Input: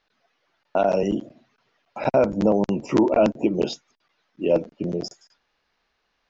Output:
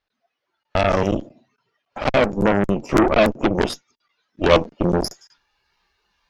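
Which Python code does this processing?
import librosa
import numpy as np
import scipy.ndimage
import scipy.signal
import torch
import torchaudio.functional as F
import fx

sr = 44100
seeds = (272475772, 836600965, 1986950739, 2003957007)

y = fx.rider(x, sr, range_db=5, speed_s=2.0)
y = fx.noise_reduce_blind(y, sr, reduce_db=10)
y = fx.cheby_harmonics(y, sr, harmonics=(2, 8), levels_db=(-7, -12), full_scale_db=-6.0)
y = y * 10.0 ** (2.0 / 20.0)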